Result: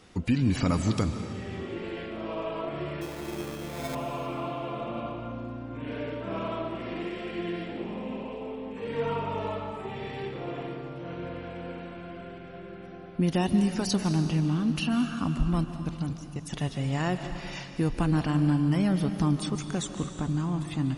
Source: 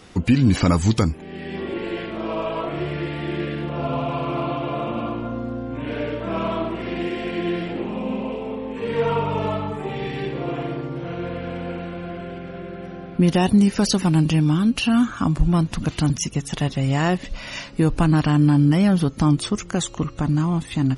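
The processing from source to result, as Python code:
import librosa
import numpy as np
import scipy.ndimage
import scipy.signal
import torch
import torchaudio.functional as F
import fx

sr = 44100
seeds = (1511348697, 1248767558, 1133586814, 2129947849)

y = fx.sample_hold(x, sr, seeds[0], rate_hz=2900.0, jitter_pct=0, at=(3.01, 3.95))
y = fx.high_shelf(y, sr, hz=5100.0, db=-12.0, at=(14.15, 14.68))
y = fx.level_steps(y, sr, step_db=22, at=(15.64, 16.46))
y = fx.rev_freeverb(y, sr, rt60_s=2.4, hf_ratio=0.95, predelay_ms=105, drr_db=7.5)
y = y * 10.0 ** (-8.5 / 20.0)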